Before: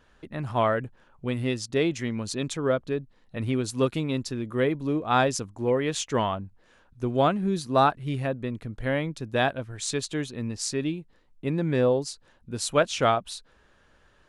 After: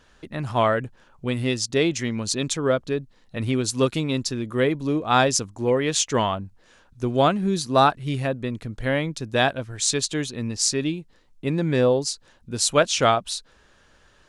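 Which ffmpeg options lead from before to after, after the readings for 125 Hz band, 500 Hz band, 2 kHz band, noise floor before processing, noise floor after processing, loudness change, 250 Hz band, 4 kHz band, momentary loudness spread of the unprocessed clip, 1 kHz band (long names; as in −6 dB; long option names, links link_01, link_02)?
+3.0 dB, +3.0 dB, +4.5 dB, −61 dBFS, −58 dBFS, +4.0 dB, +3.0 dB, +7.5 dB, 12 LU, +3.5 dB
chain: -af "equalizer=frequency=6100:width_type=o:width=1.7:gain=7,volume=3dB"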